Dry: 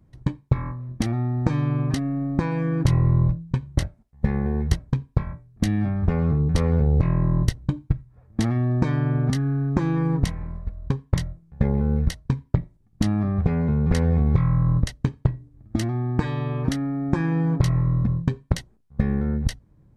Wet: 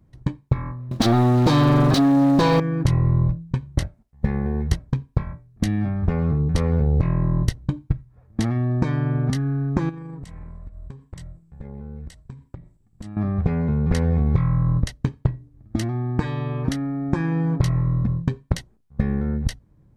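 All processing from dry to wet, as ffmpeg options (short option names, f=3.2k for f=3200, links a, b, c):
-filter_complex "[0:a]asettb=1/sr,asplit=3[a][b][c];[a]atrim=end=0.914[d];[b]atrim=start=0.91:end=2.6,asetpts=PTS-STARTPTS,afade=t=in:d=0.004:c=qsin,afade=t=out:st=1.686:d=0.004:c=qsin,highshelf=f=3k:t=q:w=3:g=9,acrusher=bits=8:mode=log:mix=0:aa=0.000001,asplit=2[e][f];[f]highpass=f=720:p=1,volume=30dB,asoftclip=type=tanh:threshold=-6.5dB[g];[e][g]amix=inputs=2:normalize=0,lowpass=f=1.2k:p=1,volume=-6dB[h];[c]atrim=start=2.596[i];[d][h]acrossfade=d=0.004:c1=hsin:c2=qsin[j];[j][i]acrossfade=d=0.004:c1=qsin:c2=hsin,asettb=1/sr,asplit=3[k][l][m];[k]atrim=end=9.894[n];[l]atrim=start=9.89:end=13.17,asetpts=PTS-STARTPTS,afade=t=in:d=0.004:c=qsin,afade=t=out:st=3.276:d=0.004:c=qsin,equalizer=f=7.8k:w=7.6:g=13.5,acompressor=threshold=-33dB:ratio=6:attack=3.2:release=140:knee=1:detection=peak[o];[m]atrim=start=13.166[p];[n][o]acrossfade=d=0.004:c1=hsin:c2=qsin[q];[q][p]acrossfade=d=0.004:c1=qsin:c2=hsin"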